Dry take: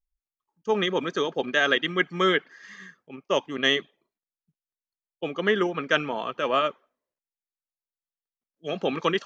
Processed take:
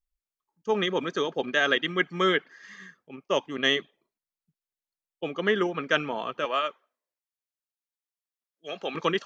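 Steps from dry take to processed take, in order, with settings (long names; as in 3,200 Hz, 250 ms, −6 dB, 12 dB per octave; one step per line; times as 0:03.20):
0:06.45–0:08.95: high-pass filter 770 Hz 6 dB per octave
level −1.5 dB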